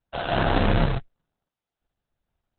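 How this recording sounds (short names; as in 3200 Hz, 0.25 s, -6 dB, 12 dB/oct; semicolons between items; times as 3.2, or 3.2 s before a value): a buzz of ramps at a fixed pitch in blocks of 64 samples; random-step tremolo; aliases and images of a low sample rate 2200 Hz, jitter 20%; Opus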